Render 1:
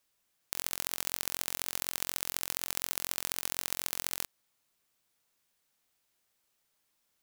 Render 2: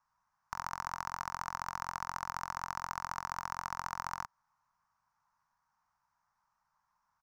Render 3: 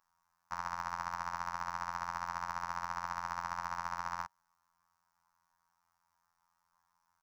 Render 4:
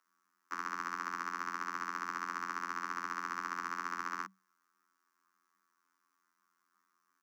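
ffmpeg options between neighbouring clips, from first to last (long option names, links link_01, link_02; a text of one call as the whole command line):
ffmpeg -i in.wav -af "firequalizer=gain_entry='entry(140,0);entry(200,-4);entry(350,-26);entry(930,13);entry(2200,-11);entry(3300,-23);entry(5600,-9);entry(9000,-28)':delay=0.05:min_phase=1,volume=2dB" out.wav
ffmpeg -i in.wav -filter_complex "[0:a]highshelf=frequency=4500:gain=6,afftfilt=real='hypot(re,im)*cos(PI*b)':imag='0':win_size=2048:overlap=0.75,acrossover=split=4700[link_01][link_02];[link_02]acompressor=threshold=-60dB:ratio=4:attack=1:release=60[link_03];[link_01][link_03]amix=inputs=2:normalize=0,volume=3.5dB" out.wav
ffmpeg -i in.wav -af "afreqshift=190" out.wav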